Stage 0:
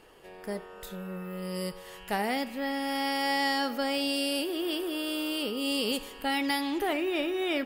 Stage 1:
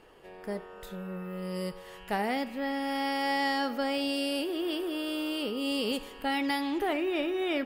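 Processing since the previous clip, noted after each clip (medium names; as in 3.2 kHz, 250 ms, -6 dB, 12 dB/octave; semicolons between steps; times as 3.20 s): treble shelf 4 kHz -7.5 dB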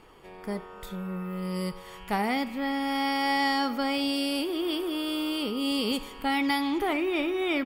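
comb 0.9 ms, depth 39%; trim +3 dB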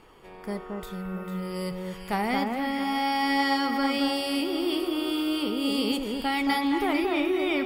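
echo whose repeats swap between lows and highs 224 ms, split 1.8 kHz, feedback 52%, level -3 dB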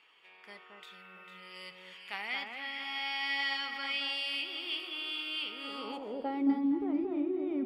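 band-pass sweep 2.7 kHz -> 210 Hz, 5.45–6.67 s; trim +1.5 dB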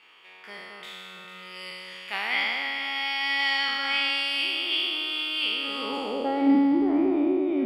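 spectral sustain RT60 2.32 s; trim +6 dB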